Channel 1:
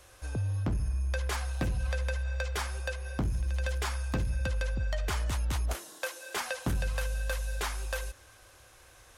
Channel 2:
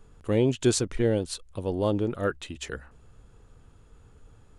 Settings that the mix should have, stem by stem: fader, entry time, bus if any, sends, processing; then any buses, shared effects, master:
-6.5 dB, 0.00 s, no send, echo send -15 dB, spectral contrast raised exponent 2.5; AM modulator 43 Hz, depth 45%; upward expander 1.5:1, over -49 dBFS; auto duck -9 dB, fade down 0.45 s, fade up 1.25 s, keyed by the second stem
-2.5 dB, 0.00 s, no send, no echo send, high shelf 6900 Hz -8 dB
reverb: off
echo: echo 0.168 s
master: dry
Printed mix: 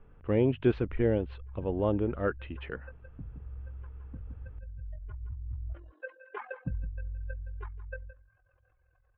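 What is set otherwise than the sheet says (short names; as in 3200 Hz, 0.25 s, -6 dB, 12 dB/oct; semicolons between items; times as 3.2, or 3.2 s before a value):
stem 1 -6.5 dB -> 0.0 dB; master: extra steep low-pass 2800 Hz 36 dB/oct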